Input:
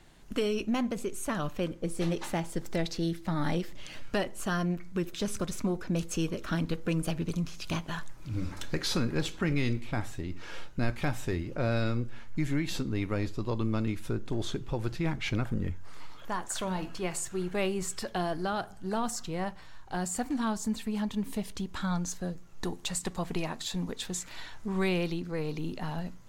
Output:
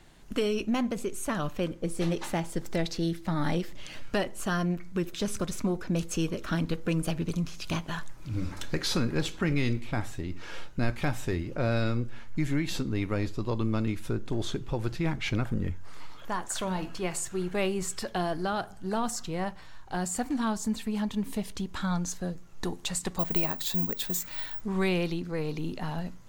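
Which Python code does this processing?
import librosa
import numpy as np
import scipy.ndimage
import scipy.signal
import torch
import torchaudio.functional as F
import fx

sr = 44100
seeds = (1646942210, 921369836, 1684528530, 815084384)

y = fx.resample_bad(x, sr, factor=2, down='none', up='zero_stuff', at=(23.19, 24.61))
y = y * librosa.db_to_amplitude(1.5)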